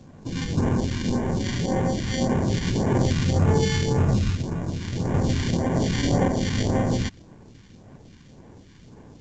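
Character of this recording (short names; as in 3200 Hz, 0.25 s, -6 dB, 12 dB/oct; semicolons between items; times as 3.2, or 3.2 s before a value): aliases and images of a low sample rate 1300 Hz, jitter 0%; phasing stages 2, 1.8 Hz, lowest notch 580–4200 Hz; a quantiser's noise floor 10-bit, dither none; A-law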